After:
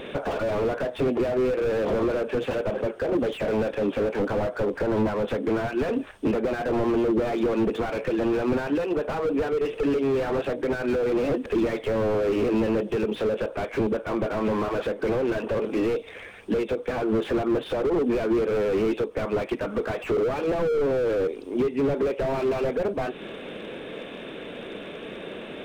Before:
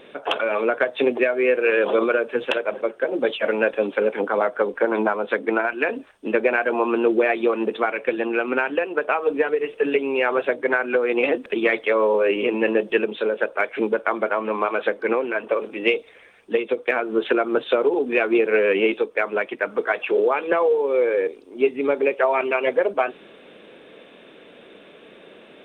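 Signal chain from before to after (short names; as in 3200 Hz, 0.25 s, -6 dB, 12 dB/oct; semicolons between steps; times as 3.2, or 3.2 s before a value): low shelf 140 Hz +11.5 dB; compressor 3:1, threshold -26 dBFS, peak gain reduction 11 dB; slew limiter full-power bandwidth 15 Hz; gain +8 dB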